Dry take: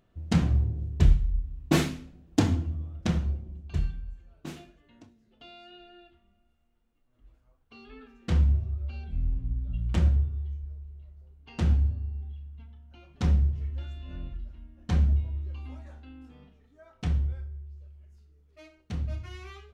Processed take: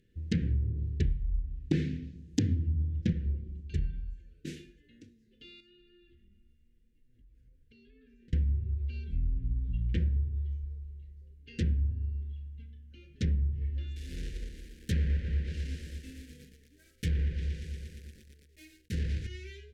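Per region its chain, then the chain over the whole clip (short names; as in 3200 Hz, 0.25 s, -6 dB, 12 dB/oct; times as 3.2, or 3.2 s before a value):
1.7–3.13 HPF 63 Hz 24 dB/oct + tone controls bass +8 dB, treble +8 dB + decimation joined by straight lines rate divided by 2×
5.6–8.33 tone controls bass +7 dB, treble -2 dB + compressor 12:1, threshold -55 dBFS
13.96–19.27 block floating point 3-bit + lo-fi delay 0.117 s, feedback 80%, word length 8-bit, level -9 dB
whole clip: elliptic band-stop 480–1700 Hz, stop band 40 dB; treble ducked by the level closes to 2400 Hz, closed at -23.5 dBFS; compressor, threshold -25 dBFS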